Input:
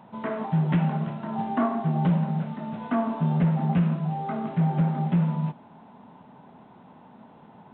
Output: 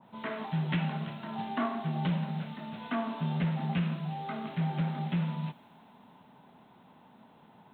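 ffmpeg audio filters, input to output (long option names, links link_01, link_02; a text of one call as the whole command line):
ffmpeg -i in.wav -filter_complex "[0:a]acrossover=split=680[link_01][link_02];[link_02]crystalizer=i=4.5:c=0[link_03];[link_01][link_03]amix=inputs=2:normalize=0,adynamicequalizer=threshold=0.00631:dfrequency=1600:dqfactor=0.7:tfrequency=1600:tqfactor=0.7:attack=5:release=100:ratio=0.375:range=3:mode=boostabove:tftype=highshelf,volume=-8dB" out.wav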